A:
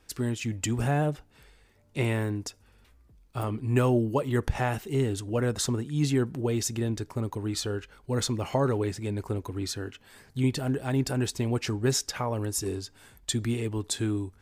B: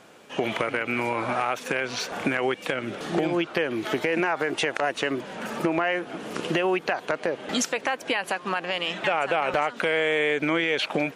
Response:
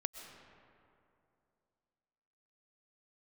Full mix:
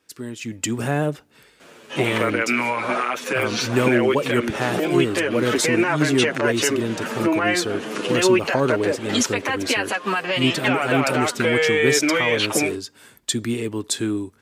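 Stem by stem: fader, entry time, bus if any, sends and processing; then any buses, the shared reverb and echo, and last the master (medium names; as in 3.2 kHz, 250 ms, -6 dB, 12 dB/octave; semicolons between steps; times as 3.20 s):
-2.0 dB, 0.00 s, no send, none
0.0 dB, 1.60 s, no send, peak limiter -15 dBFS, peak gain reduction 4 dB; endless flanger 8.2 ms -1.5 Hz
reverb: none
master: high-pass 180 Hz 12 dB/octave; peaking EQ 780 Hz -5.5 dB 0.42 oct; level rider gain up to 9 dB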